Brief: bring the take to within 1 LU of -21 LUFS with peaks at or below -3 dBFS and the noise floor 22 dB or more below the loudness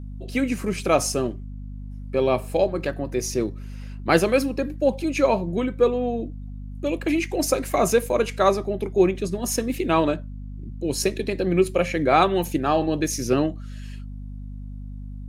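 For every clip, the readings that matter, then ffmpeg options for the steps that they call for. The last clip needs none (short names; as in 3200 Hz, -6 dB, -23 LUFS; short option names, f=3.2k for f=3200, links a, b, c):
hum 50 Hz; harmonics up to 250 Hz; hum level -32 dBFS; loudness -23.0 LUFS; peak -3.0 dBFS; loudness target -21.0 LUFS
-> -af "bandreject=f=50:t=h:w=6,bandreject=f=100:t=h:w=6,bandreject=f=150:t=h:w=6,bandreject=f=200:t=h:w=6,bandreject=f=250:t=h:w=6"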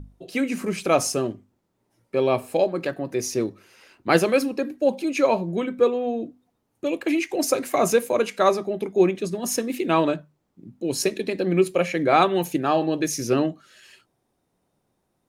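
hum none; loudness -23.5 LUFS; peak -3.0 dBFS; loudness target -21.0 LUFS
-> -af "volume=2.5dB,alimiter=limit=-3dB:level=0:latency=1"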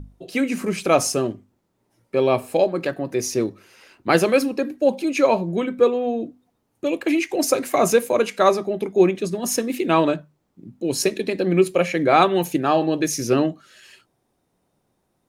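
loudness -21.0 LUFS; peak -3.0 dBFS; noise floor -71 dBFS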